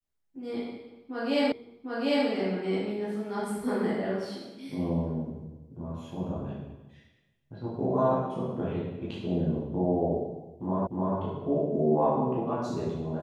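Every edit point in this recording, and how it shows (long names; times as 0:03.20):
0:01.52: the same again, the last 0.75 s
0:10.87: the same again, the last 0.3 s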